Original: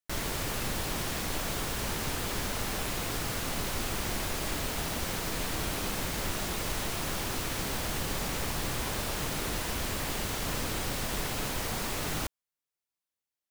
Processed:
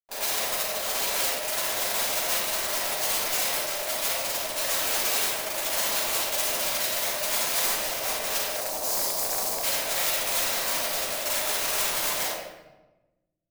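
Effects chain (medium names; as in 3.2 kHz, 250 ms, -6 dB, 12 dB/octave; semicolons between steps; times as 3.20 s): spectral contrast enhancement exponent 2; Schmitt trigger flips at -53 dBFS; ring modulator 610 Hz; 8.51–9.62 s: high-order bell 2.2 kHz -11.5 dB; on a send: feedback echo behind a low-pass 68 ms, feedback 47%, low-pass 1.6 kHz, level -11 dB; on the sum: simulated room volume 490 m³, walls mixed, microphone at 8.9 m; wavefolder -14.5 dBFS; pre-emphasis filter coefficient 0.97; trim +8 dB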